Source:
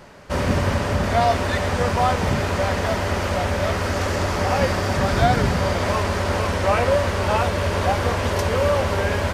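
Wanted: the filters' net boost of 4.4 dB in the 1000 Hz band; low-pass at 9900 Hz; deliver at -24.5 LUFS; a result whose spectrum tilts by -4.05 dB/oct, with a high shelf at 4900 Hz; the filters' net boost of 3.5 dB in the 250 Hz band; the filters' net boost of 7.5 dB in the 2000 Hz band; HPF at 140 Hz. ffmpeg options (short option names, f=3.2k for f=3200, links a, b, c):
-af "highpass=140,lowpass=9.9k,equalizer=f=250:t=o:g=5,equalizer=f=1k:t=o:g=3.5,equalizer=f=2k:t=o:g=7,highshelf=f=4.9k:g=8,volume=-6.5dB"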